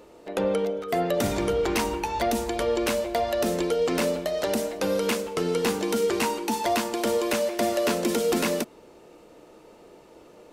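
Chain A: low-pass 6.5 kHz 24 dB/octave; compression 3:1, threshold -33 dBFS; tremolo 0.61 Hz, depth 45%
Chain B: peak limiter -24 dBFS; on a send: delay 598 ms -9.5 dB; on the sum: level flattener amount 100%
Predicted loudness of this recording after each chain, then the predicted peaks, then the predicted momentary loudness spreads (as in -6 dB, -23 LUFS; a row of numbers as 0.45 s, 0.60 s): -36.0 LUFS, -28.0 LUFS; -20.5 dBFS, -16.0 dBFS; 18 LU, 0 LU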